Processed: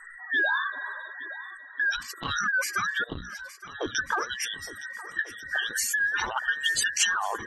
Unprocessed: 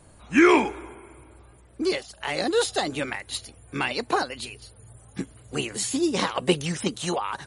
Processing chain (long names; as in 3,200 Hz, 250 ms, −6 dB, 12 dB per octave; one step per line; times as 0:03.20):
frequency inversion band by band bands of 2,000 Hz
mains-hum notches 60/120/180/240/300 Hz
gate on every frequency bin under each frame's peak −15 dB strong
0:03.04–0:03.95: drawn EQ curve 360 Hz 0 dB, 2,000 Hz −27 dB, 4,000 Hz −13 dB, 8,200 Hz −27 dB
in parallel at +3 dB: brickwall limiter −19.5 dBFS, peak gain reduction 11 dB
on the sum: downward compressor 3 to 1, threshold −27 dBFS, peak gain reduction 12.5 dB
0:06.63–0:07.07: flat-topped bell 4,800 Hz +12 dB
on a send: feedback echo with a long and a short gap by turns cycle 1,443 ms, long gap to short 1.5 to 1, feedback 43%, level −16 dB
on the sum: saturating transformer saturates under 940 Hz